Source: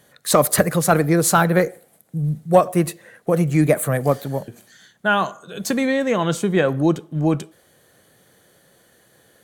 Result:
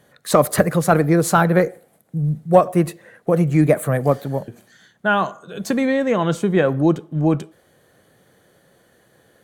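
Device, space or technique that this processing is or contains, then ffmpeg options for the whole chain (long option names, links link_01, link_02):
behind a face mask: -af "highshelf=frequency=2800:gain=-8,volume=1.5dB"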